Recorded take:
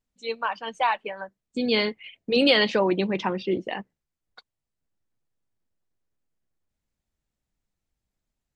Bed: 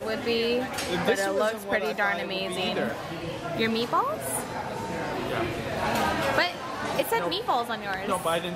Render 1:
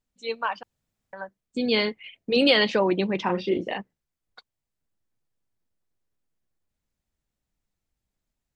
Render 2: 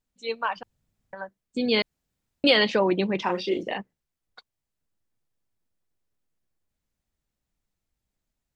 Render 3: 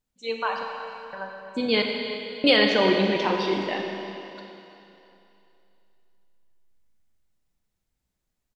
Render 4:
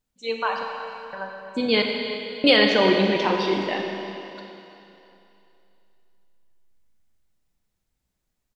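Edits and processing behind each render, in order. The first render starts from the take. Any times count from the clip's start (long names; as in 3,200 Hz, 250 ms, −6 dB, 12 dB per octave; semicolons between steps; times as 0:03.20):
0:00.63–0:01.13: fill with room tone; 0:03.23–0:03.78: double-tracking delay 34 ms −4 dB
0:00.56–0:01.15: low-shelf EQ 240 Hz +8.5 dB; 0:01.82–0:02.44: fill with room tone; 0:03.22–0:03.63: bass and treble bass −8 dB, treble +10 dB
repeating echo 339 ms, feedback 49%, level −17 dB; four-comb reverb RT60 2.8 s, combs from 31 ms, DRR 2 dB
level +2 dB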